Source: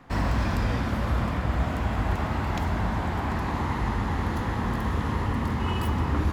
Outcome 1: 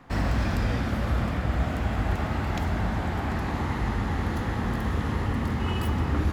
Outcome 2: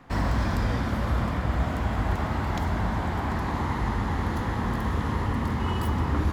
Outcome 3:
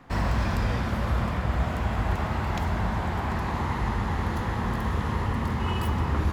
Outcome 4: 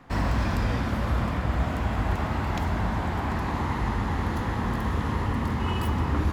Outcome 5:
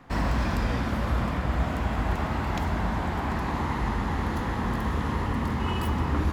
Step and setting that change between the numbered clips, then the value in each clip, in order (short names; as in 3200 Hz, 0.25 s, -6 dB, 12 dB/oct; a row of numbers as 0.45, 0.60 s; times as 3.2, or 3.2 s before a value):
dynamic EQ, frequency: 1000, 2600, 280, 6800, 100 Hz